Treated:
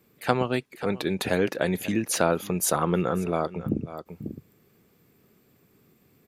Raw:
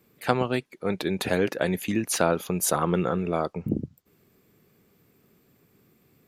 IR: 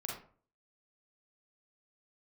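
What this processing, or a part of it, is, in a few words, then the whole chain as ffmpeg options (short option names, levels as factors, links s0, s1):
ducked delay: -filter_complex "[0:a]asplit=3[s0][s1][s2];[s1]adelay=542,volume=0.376[s3];[s2]apad=whole_len=300762[s4];[s3][s4]sidechaincompress=threshold=0.0126:ratio=8:attack=40:release=191[s5];[s0][s5]amix=inputs=2:normalize=0"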